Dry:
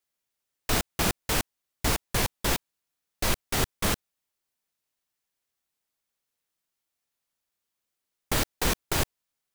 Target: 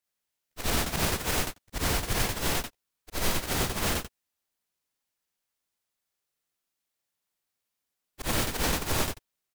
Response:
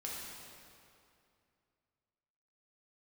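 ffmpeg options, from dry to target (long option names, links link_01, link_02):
-filter_complex "[0:a]afftfilt=real='re':imag='-im':win_size=8192:overlap=0.75,asplit=2[link_01][link_02];[link_02]asetrate=35002,aresample=44100,atempo=1.25992,volume=-4dB[link_03];[link_01][link_03]amix=inputs=2:normalize=0,volume=2.5dB"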